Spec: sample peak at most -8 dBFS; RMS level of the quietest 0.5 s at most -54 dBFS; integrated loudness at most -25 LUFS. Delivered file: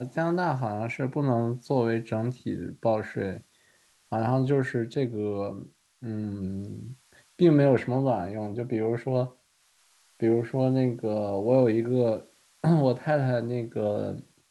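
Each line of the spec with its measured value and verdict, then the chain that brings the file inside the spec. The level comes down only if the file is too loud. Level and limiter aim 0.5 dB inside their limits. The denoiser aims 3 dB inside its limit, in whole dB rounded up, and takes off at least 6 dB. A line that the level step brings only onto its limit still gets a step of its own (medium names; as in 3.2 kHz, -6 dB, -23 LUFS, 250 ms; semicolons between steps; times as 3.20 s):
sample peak -9.0 dBFS: pass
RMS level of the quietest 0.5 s -65 dBFS: pass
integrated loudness -27.0 LUFS: pass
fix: none needed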